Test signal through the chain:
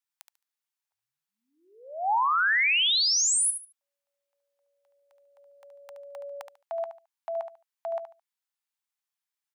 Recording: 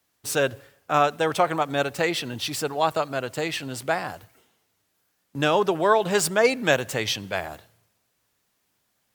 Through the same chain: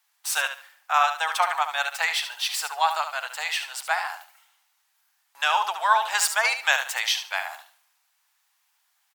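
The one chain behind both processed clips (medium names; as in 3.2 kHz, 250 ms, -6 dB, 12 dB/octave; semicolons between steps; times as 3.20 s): elliptic high-pass 810 Hz, stop band 80 dB; on a send: feedback delay 72 ms, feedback 23%, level -9 dB; on the sum: trim +3 dB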